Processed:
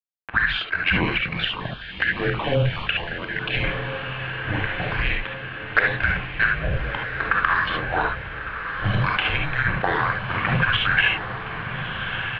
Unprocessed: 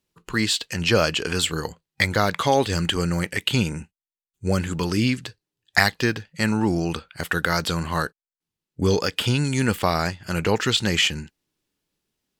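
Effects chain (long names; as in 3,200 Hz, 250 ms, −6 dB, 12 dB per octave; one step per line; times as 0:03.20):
parametric band 550 Hz −11 dB 0.43 octaves
double-tracking delay 32 ms −10.5 dB
slack as between gear wheels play −24 dBFS
flanger swept by the level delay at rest 9.6 ms, full sweep at −17 dBFS
single-sideband voice off tune −280 Hz 360–3,400 Hz
parametric band 1,600 Hz +13.5 dB 0.25 octaves
reverb whose tail is shaped and stops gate 90 ms rising, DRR 0.5 dB
downward compressor 3 to 1, threshold −25 dBFS, peak gain reduction 10.5 dB
feedback delay with all-pass diffusion 1,310 ms, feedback 59%, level −8 dB
0:01.18–0:03.64: notch on a step sequencer 9.5 Hz 950–1,900 Hz
level +7 dB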